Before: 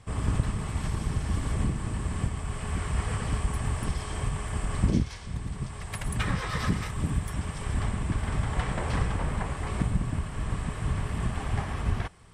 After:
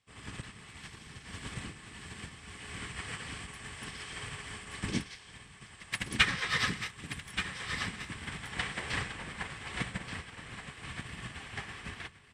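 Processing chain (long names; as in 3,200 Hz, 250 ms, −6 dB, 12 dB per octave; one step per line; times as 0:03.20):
in parallel at −11 dB: hard clipping −27.5 dBFS, distortion −8 dB
on the sum: meter weighting curve D
on a send: single-tap delay 1,178 ms −4 dB
on the sum: dynamic equaliser 1,800 Hz, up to +4 dB, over −43 dBFS, Q 2.2
notch filter 610 Hz, Q 12
expander for the loud parts 2.5 to 1, over −37 dBFS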